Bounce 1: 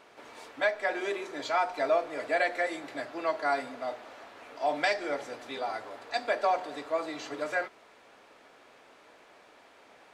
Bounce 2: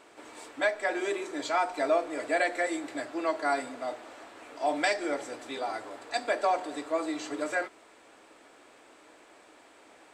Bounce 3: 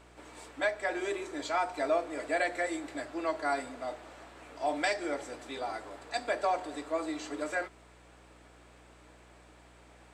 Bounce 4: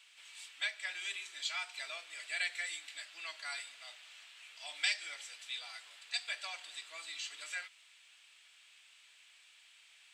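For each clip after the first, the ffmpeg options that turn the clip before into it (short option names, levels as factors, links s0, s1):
-af "equalizer=f=160:t=o:w=0.33:g=-6,equalizer=f=315:t=o:w=0.33:g=8,equalizer=f=8000:t=o:w=0.33:g=12"
-af "aeval=exprs='val(0)+0.00158*(sin(2*PI*60*n/s)+sin(2*PI*2*60*n/s)/2+sin(2*PI*3*60*n/s)/3+sin(2*PI*4*60*n/s)/4+sin(2*PI*5*60*n/s)/5)':c=same,volume=0.708"
-af "highpass=f=2900:t=q:w=2.3"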